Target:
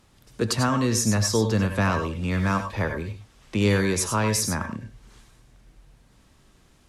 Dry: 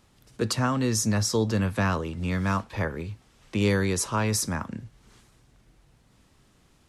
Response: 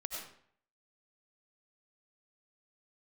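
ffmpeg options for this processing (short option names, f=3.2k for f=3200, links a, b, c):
-filter_complex "[1:a]atrim=start_sample=2205,atrim=end_sample=3969,asetrate=37485,aresample=44100[a];[0:a][a]afir=irnorm=-1:irlink=0,volume=4.5dB"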